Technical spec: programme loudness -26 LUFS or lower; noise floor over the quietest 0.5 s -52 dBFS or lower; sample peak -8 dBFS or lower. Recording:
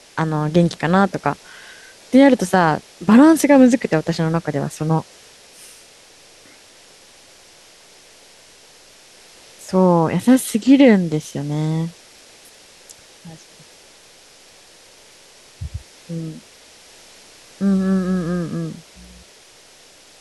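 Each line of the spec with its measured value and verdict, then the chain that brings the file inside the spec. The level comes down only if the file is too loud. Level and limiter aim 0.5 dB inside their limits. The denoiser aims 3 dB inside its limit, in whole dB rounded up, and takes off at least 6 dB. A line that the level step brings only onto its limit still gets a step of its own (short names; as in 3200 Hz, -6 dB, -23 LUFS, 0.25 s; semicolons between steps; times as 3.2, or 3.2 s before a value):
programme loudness -16.5 LUFS: fail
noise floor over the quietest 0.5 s -47 dBFS: fail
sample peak -2.5 dBFS: fail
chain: gain -10 dB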